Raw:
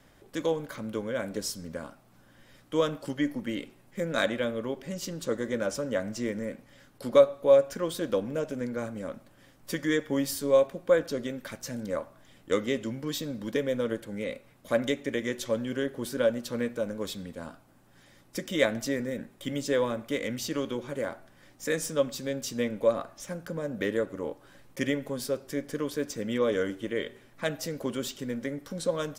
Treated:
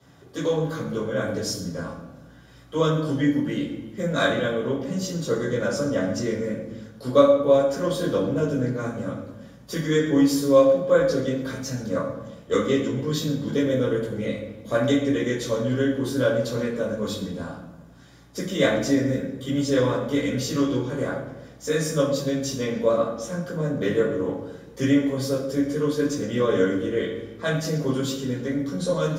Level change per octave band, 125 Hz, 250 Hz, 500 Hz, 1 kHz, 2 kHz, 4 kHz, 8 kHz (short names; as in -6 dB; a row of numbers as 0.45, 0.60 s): +12.0, +8.5, +5.0, +7.0, +4.5, +5.0, +4.0 dB